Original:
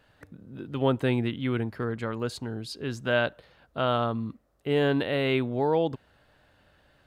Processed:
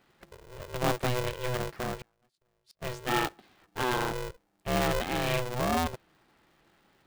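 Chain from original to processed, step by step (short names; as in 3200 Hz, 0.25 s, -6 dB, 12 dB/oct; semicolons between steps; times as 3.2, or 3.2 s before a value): 1.99–2.82 flipped gate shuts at -28 dBFS, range -38 dB; polarity switched at an audio rate 250 Hz; gain -3.5 dB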